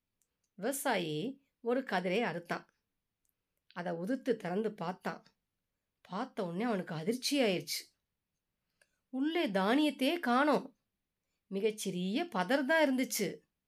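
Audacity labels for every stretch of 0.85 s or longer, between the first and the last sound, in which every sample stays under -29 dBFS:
2.570000	3.780000	silence
5.110000	6.150000	silence
7.770000	9.210000	silence
10.580000	11.560000	silence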